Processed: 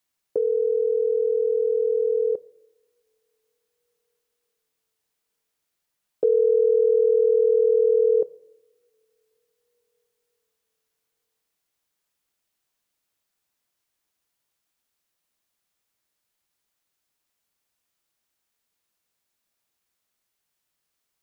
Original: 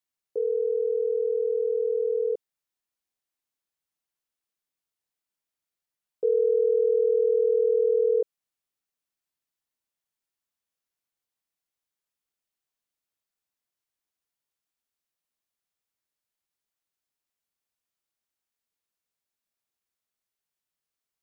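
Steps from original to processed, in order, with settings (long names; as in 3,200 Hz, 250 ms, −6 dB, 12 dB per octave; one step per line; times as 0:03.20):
dynamic equaliser 450 Hz, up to −5 dB, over −34 dBFS, Q 0.98
convolution reverb, pre-delay 3 ms, DRR 17 dB
level +9 dB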